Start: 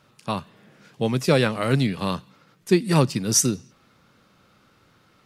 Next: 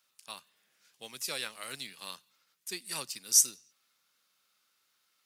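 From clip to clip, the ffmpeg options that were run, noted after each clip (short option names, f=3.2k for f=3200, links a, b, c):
-filter_complex "[0:a]aderivative,asplit=2[a][b];[b]aeval=exprs='val(0)*gte(abs(val(0)),0.00794)':c=same,volume=-11dB[c];[a][c]amix=inputs=2:normalize=0,volume=-4dB"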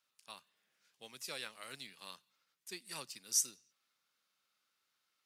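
-af "highshelf=f=5.9k:g=-6,volume=-6dB"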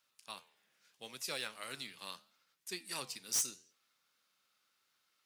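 -af "flanger=delay=7.2:depth=6.4:regen=-85:speed=0.74:shape=sinusoidal,asoftclip=type=hard:threshold=-37.5dB,volume=8.5dB"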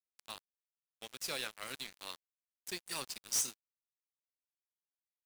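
-af "acrusher=bits=6:mix=0:aa=0.5,volume=1dB"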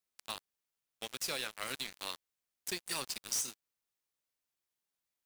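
-af "acompressor=threshold=-40dB:ratio=6,volume=6.5dB"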